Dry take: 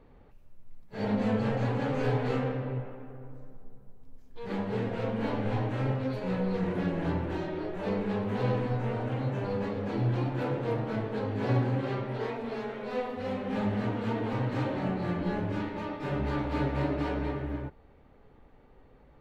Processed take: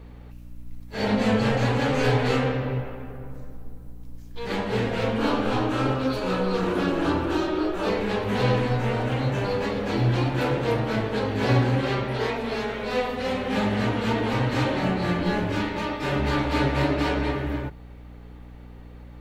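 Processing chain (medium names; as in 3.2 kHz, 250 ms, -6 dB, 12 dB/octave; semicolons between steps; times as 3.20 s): treble shelf 2.1 kHz +11.5 dB; hum notches 50/100/150/200 Hz; hum 60 Hz, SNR 18 dB; 5.18–7.90 s: graphic EQ with 31 bands 100 Hz -11 dB, 160 Hz -10 dB, 315 Hz +7 dB, 1.25 kHz +8 dB, 2 kHz -8 dB; trim +6 dB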